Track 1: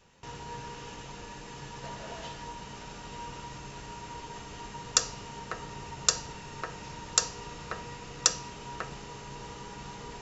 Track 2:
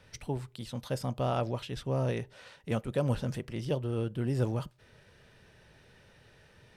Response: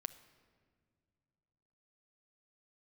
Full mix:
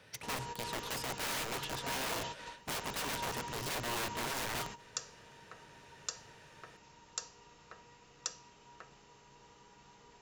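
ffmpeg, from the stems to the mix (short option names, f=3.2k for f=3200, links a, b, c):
-filter_complex "[0:a]volume=-0.5dB[a];[1:a]highpass=95,aeval=exprs='(mod(50.1*val(0)+1,2)-1)/50.1':c=same,volume=0dB,asplit=3[b][c][d];[c]volume=-12dB[e];[d]apad=whole_len=450593[f];[a][f]sidechaingate=range=-15dB:threshold=-50dB:ratio=16:detection=peak[g];[2:a]atrim=start_sample=2205[h];[e][h]afir=irnorm=-1:irlink=0[i];[g][b][i]amix=inputs=3:normalize=0,lowshelf=f=230:g=-6.5"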